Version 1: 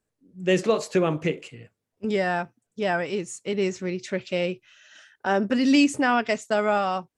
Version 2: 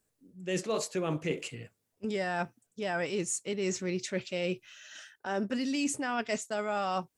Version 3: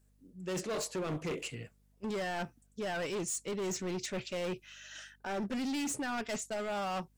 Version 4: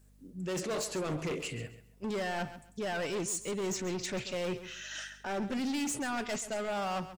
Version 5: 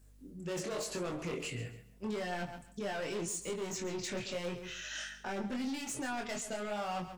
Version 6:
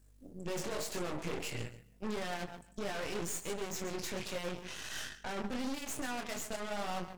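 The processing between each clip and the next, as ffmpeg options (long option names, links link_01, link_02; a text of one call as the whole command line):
ffmpeg -i in.wav -af "highshelf=frequency=5500:gain=10,areverse,acompressor=threshold=-28dB:ratio=12,areverse" out.wav
ffmpeg -i in.wav -af "volume=32.5dB,asoftclip=hard,volume=-32.5dB,aeval=exprs='val(0)+0.000447*(sin(2*PI*50*n/s)+sin(2*PI*2*50*n/s)/2+sin(2*PI*3*50*n/s)/3+sin(2*PI*4*50*n/s)/4+sin(2*PI*5*50*n/s)/5)':channel_layout=same" out.wav
ffmpeg -i in.wav -af "alimiter=level_in=14dB:limit=-24dB:level=0:latency=1:release=16,volume=-14dB,aecho=1:1:135|270|405:0.211|0.0465|0.0102,volume=7dB" out.wav
ffmpeg -i in.wav -af "acompressor=threshold=-36dB:ratio=6,flanger=delay=22.5:depth=2.5:speed=0.85,volume=3.5dB" out.wav
ffmpeg -i in.wav -af "aeval=exprs='0.0376*(cos(1*acos(clip(val(0)/0.0376,-1,1)))-cos(1*PI/2))+0.00376*(cos(3*acos(clip(val(0)/0.0376,-1,1)))-cos(3*PI/2))+0.0075*(cos(6*acos(clip(val(0)/0.0376,-1,1)))-cos(6*PI/2))':channel_layout=same" out.wav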